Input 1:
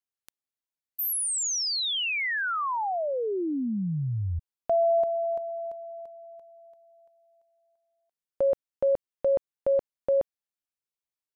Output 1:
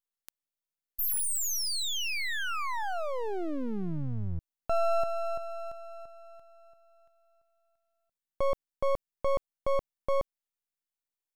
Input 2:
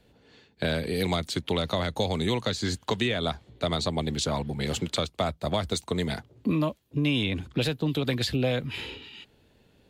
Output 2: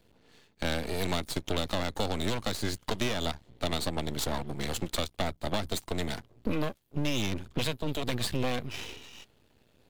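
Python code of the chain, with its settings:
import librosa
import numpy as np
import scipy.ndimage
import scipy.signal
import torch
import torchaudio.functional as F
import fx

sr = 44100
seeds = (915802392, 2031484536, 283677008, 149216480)

y = np.maximum(x, 0.0)
y = fx.high_shelf(y, sr, hz=9500.0, db=5.0)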